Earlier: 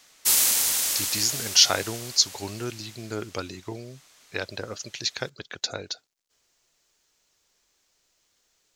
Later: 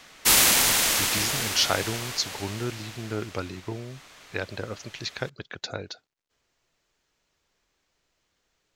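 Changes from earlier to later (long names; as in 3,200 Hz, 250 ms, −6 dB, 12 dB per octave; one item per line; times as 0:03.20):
background +11.0 dB
master: add bass and treble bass +4 dB, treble −11 dB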